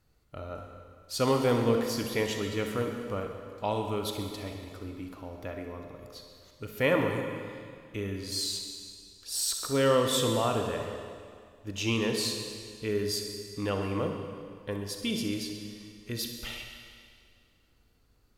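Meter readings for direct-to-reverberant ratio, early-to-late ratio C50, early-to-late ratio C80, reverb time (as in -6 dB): 3.5 dB, 4.0 dB, 5.5 dB, 2.1 s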